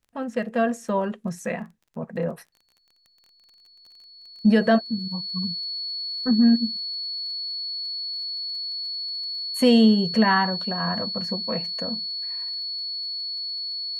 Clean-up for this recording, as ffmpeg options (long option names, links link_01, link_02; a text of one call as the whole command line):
ffmpeg -i in.wav -af "adeclick=threshold=4,bandreject=frequency=4400:width=30" out.wav